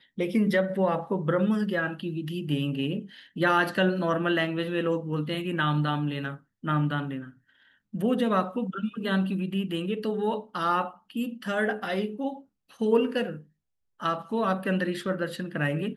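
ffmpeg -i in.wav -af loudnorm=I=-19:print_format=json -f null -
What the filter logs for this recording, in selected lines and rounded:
"input_i" : "-28.1",
"input_tp" : "-10.6",
"input_lra" : "2.9",
"input_thresh" : "-38.4",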